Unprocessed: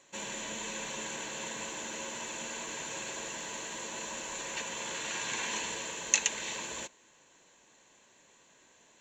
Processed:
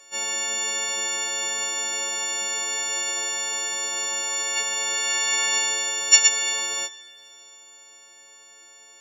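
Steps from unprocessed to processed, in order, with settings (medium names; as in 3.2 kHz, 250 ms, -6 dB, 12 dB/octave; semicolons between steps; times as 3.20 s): partials quantised in pitch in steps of 4 st; resonant low shelf 310 Hz -6.5 dB, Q 1.5; thinning echo 75 ms, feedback 84%, high-pass 620 Hz, level -22.5 dB; trim +3 dB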